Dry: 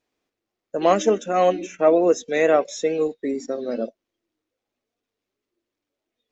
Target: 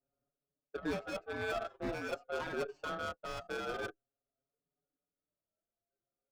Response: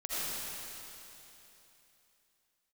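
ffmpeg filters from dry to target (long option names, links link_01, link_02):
-filter_complex "[0:a]highpass=160,aecho=1:1:7.3:0.94,areverse,acompressor=threshold=-24dB:ratio=16,areverse,aeval=exprs='val(0)*sin(2*PI*980*n/s)':channel_layout=same,adynamicsmooth=sensitivity=1.5:basefreq=520,asoftclip=type=hard:threshold=-31.5dB,asplit=2[link_01][link_02];[link_02]adelay=5.3,afreqshift=0.48[link_03];[link_01][link_03]amix=inputs=2:normalize=1,volume=2dB"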